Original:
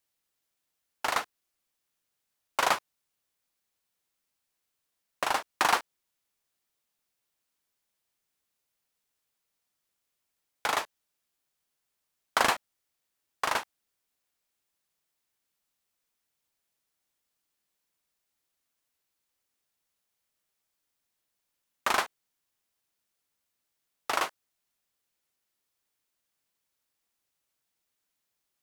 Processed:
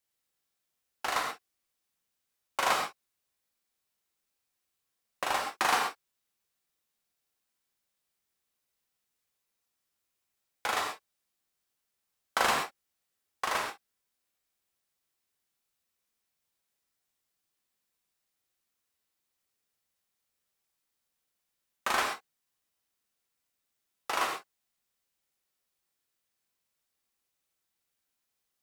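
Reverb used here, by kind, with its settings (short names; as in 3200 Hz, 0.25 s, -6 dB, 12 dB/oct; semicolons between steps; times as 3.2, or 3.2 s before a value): non-linear reverb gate 0.15 s flat, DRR 0 dB; gain -4 dB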